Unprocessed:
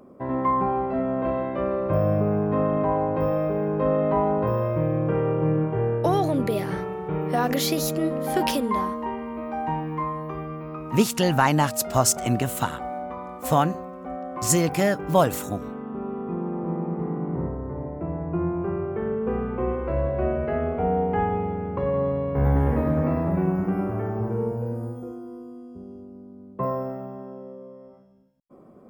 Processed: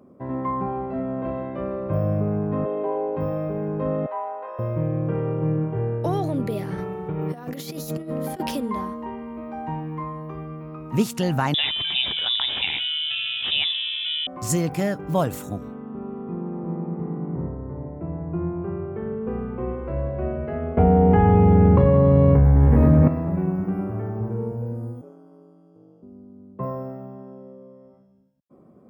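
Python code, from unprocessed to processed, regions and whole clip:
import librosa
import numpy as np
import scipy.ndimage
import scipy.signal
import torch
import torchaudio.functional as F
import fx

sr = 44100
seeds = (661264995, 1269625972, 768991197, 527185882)

y = fx.chain(x, sr, fx.cabinet(low_hz=250.0, low_slope=24, high_hz=3600.0, hz=(270.0, 390.0, 690.0, 1200.0, 1800.0, 3500.0), db=(-6, 8, 3, -8, -5, 6)),
    fx.doubler(ms=17.0, db=-10.5), at=(2.65, 3.17))
y = fx.chain(y, sr, fx.highpass(hz=630.0, slope=24),
    fx.air_absorb(metres=220.0),
    fx.doubler(ms=14.0, db=-11), at=(4.06, 4.59))
y = fx.chain(y, sr, fx.high_shelf(hz=11000.0, db=6.0),
    fx.over_compress(threshold_db=-27.0, ratio=-0.5), at=(6.78, 8.4))
y = fx.chain(y, sr, fx.freq_invert(carrier_hz=3700),
    fx.env_flatten(amount_pct=70), at=(11.54, 14.27))
y = fx.chain(y, sr, fx.low_shelf(hz=120.0, db=8.5),
    fx.env_flatten(amount_pct=100), at=(20.77, 23.08))
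y = fx.chain(y, sr, fx.highpass(hz=400.0, slope=12),
    fx.high_shelf(hz=10000.0, db=-7.5),
    fx.ring_mod(carrier_hz=74.0), at=(25.01, 26.03))
y = scipy.signal.sosfilt(scipy.signal.butter(2, 73.0, 'highpass', fs=sr, output='sos'), y)
y = fx.low_shelf(y, sr, hz=240.0, db=9.0)
y = y * 10.0 ** (-5.5 / 20.0)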